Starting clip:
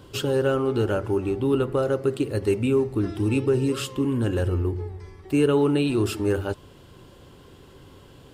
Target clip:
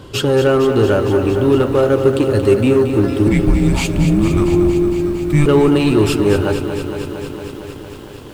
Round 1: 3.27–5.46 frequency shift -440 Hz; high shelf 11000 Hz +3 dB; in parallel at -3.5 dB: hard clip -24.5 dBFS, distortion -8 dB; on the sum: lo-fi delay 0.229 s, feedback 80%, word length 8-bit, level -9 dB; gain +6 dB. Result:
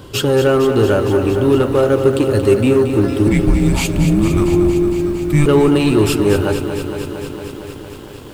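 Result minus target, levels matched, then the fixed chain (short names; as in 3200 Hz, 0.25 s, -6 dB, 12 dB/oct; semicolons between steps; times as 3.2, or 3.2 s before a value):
8000 Hz band +2.5 dB
3.27–5.46 frequency shift -440 Hz; high shelf 11000 Hz -7.5 dB; in parallel at -3.5 dB: hard clip -24.5 dBFS, distortion -8 dB; on the sum: lo-fi delay 0.229 s, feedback 80%, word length 8-bit, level -9 dB; gain +6 dB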